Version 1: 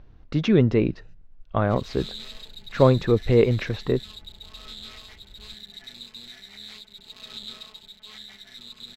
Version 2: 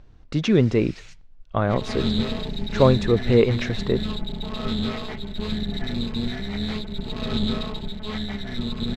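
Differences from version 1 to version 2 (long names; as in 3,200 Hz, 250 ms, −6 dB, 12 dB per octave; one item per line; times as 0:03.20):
speech: remove high-frequency loss of the air 110 metres
first sound: remove moving average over 40 samples
second sound: remove first-order pre-emphasis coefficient 0.97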